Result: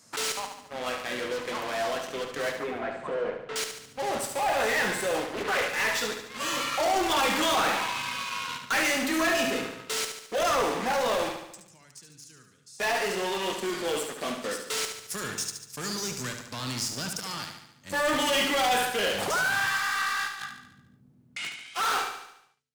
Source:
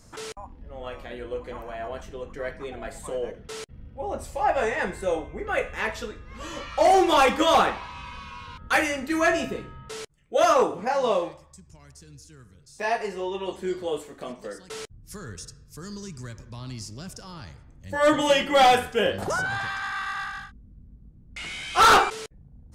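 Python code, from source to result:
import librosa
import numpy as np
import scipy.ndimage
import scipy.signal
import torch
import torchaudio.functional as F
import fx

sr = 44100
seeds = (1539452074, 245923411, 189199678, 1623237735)

p1 = fx.fade_out_tail(x, sr, length_s=5.08)
p2 = scipy.signal.sosfilt(scipy.signal.butter(4, 120.0, 'highpass', fs=sr, output='sos'), p1)
p3 = fx.peak_eq(p2, sr, hz=260.0, db=4.5, octaves=0.27)
p4 = fx.fuzz(p3, sr, gain_db=39.0, gate_db=-41.0)
p5 = p3 + F.gain(torch.from_numpy(p4), -11.5).numpy()
p6 = fx.tilt_shelf(p5, sr, db=-5.5, hz=830.0)
p7 = 10.0 ** (-18.5 / 20.0) * np.tanh(p6 / 10.0 ** (-18.5 / 20.0))
p8 = fx.lowpass(p7, sr, hz=1700.0, slope=12, at=(2.52, 3.56))
p9 = fx.over_compress(p8, sr, threshold_db=-44.0, ratio=-1.0, at=(20.27, 21.48), fade=0.02)
p10 = p9 + fx.echo_feedback(p9, sr, ms=72, feedback_pct=54, wet_db=-7, dry=0)
p11 = fx.doppler_dist(p10, sr, depth_ms=0.49, at=(5.24, 5.7))
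y = F.gain(torch.from_numpy(p11), -4.0).numpy()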